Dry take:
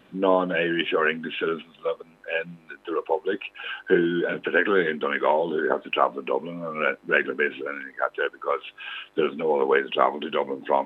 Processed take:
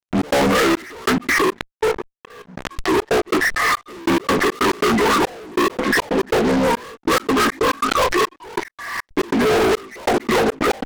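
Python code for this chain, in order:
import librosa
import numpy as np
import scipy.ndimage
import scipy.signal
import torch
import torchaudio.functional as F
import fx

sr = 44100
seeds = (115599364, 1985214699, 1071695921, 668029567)

y = fx.partial_stretch(x, sr, pct=84)
y = fx.comb(y, sr, ms=3.9, depth=0.64, at=(7.05, 7.75))
y = fx.vibrato(y, sr, rate_hz=0.32, depth_cents=61.0)
y = fx.level_steps(y, sr, step_db=16, at=(1.38, 2.49))
y = fx.fuzz(y, sr, gain_db=43.0, gate_db=-49.0)
y = fx.gate_flip(y, sr, shuts_db=-20.0, range_db=-34, at=(8.63, 9.09))
y = fx.step_gate(y, sr, bpm=140, pattern='.x.xxxx...x.xx', floor_db=-60.0, edge_ms=4.5)
y = fx.pre_swell(y, sr, db_per_s=43.0)
y = y * librosa.db_to_amplitude(-1.5)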